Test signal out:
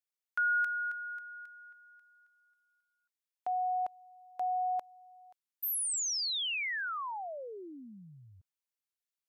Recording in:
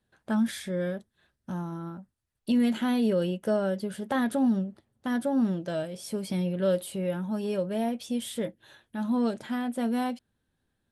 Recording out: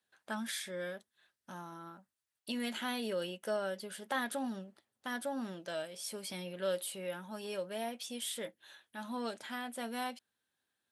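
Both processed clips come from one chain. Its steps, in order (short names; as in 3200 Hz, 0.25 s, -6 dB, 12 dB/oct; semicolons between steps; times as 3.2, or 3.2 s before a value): HPF 1400 Hz 6 dB/oct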